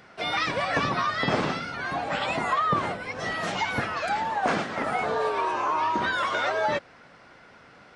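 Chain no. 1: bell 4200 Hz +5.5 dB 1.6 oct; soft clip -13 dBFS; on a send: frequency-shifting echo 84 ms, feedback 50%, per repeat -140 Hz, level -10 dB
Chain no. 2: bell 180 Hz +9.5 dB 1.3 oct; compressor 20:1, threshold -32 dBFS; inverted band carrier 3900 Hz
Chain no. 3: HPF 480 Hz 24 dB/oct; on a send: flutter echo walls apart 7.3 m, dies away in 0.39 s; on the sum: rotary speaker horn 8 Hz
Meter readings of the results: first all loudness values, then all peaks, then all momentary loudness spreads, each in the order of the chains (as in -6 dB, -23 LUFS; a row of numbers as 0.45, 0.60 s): -25.5, -33.0, -29.5 LUFS; -13.0, -21.0, -12.5 dBFS; 5, 10, 6 LU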